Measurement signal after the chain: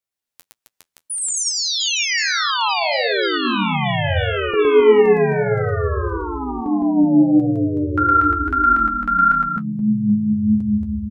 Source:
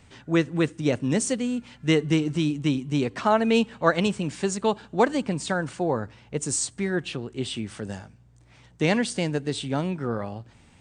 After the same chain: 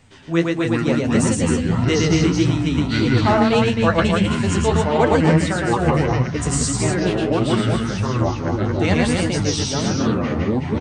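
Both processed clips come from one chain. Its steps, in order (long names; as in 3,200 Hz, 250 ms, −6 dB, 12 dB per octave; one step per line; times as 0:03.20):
loudspeakers that aren't time-aligned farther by 39 metres −2 dB, 91 metres −5 dB
delay with pitch and tempo change per echo 246 ms, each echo −6 semitones, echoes 3
flanger 1.6 Hz, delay 7.3 ms, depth 6.3 ms, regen +36%
level +5.5 dB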